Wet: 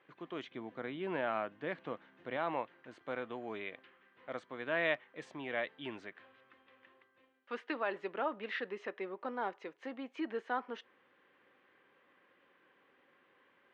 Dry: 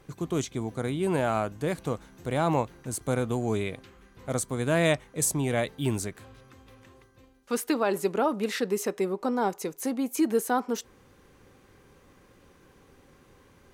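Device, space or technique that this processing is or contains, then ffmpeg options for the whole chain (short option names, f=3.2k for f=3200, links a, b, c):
phone earpiece: -filter_complex "[0:a]highpass=410,equalizer=f=430:t=q:w=4:g=-5,equalizer=f=790:t=q:w=4:g=-3,equalizer=f=1.8k:t=q:w=4:g=6,equalizer=f=3.1k:t=q:w=4:g=4,lowpass=f=3.1k:w=0.5412,lowpass=f=3.1k:w=1.3066,asettb=1/sr,asplit=3[a][b][c];[a]atrim=end=0.444[d];[b]atrim=start=0.44:end=2.37,asetpts=PTS-STARTPTS,afade=t=in:d=0.004:c=qsin,afade=t=out:st=1.926:d=0.004:c=qsin,equalizer=f=160:t=o:w=2.4:g=5.5[e];[c]atrim=start=2.366[f];[d][e]acrossfade=d=0.004:c1=hsin:c2=qsin[g];[g][f]acrossfade=d=0.004:c1=qsin:c2=hsin,volume=-7.5dB"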